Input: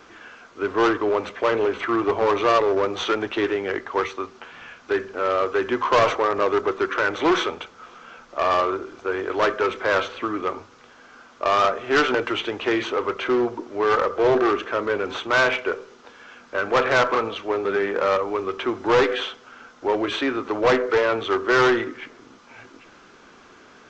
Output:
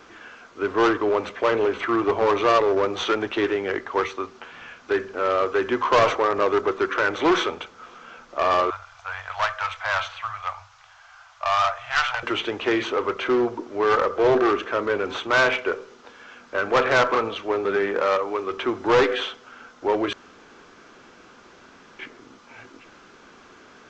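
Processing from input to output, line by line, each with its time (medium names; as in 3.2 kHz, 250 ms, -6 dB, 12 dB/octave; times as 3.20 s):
8.70–12.23 s: elliptic band-stop 110–720 Hz, stop band 50 dB
18.02–18.51 s: bass shelf 170 Hz -11 dB
20.13–21.99 s: room tone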